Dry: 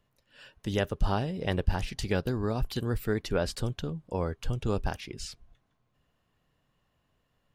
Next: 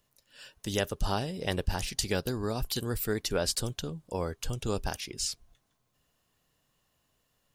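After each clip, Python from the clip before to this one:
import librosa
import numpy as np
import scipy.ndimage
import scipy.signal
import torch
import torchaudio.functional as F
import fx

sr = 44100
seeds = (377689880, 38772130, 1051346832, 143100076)

y = fx.bass_treble(x, sr, bass_db=-3, treble_db=13)
y = y * 10.0 ** (-1.0 / 20.0)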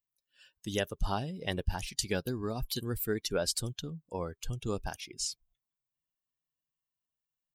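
y = fx.bin_expand(x, sr, power=1.5)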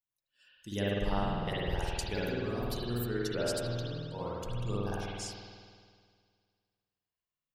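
y = fx.rev_spring(x, sr, rt60_s=2.0, pass_ms=(50,), chirp_ms=30, drr_db=-7.5)
y = y * 10.0 ** (-7.5 / 20.0)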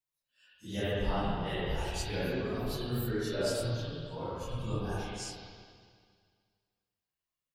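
y = fx.phase_scramble(x, sr, seeds[0], window_ms=100)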